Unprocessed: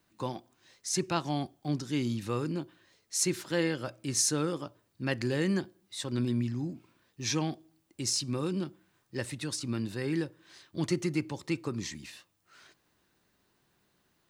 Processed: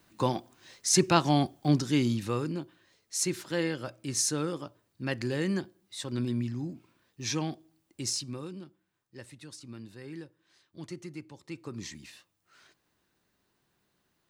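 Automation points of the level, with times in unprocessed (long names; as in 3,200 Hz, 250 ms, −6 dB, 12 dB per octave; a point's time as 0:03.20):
0:01.72 +7.5 dB
0:02.60 −1 dB
0:08.09 −1 dB
0:08.62 −11.5 dB
0:11.41 −11.5 dB
0:11.84 −3 dB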